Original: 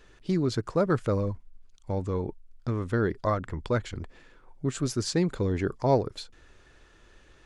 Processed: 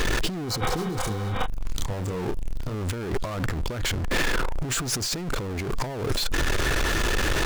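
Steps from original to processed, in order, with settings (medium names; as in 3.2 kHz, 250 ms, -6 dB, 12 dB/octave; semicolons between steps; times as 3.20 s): power-law waveshaper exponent 0.35; 0.53–1.41 s: spectral replace 490–3800 Hz before; compressor with a negative ratio -26 dBFS, ratio -1; 0.78–2.75 s: doubling 28 ms -6 dB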